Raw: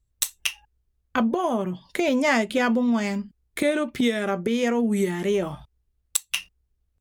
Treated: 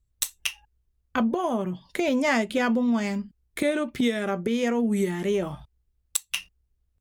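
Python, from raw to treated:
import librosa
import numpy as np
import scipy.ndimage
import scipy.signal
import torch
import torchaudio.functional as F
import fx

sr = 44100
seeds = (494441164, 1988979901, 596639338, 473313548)

y = fx.low_shelf(x, sr, hz=190.0, db=3.0)
y = F.gain(torch.from_numpy(y), -2.5).numpy()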